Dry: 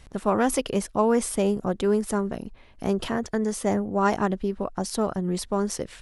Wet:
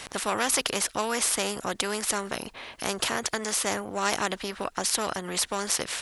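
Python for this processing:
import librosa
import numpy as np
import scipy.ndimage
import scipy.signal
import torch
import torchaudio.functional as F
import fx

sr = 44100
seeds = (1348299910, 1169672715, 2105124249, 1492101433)

y = fx.highpass(x, sr, hz=860.0, slope=6)
y = fx.spectral_comp(y, sr, ratio=2.0)
y = y * 10.0 ** (5.0 / 20.0)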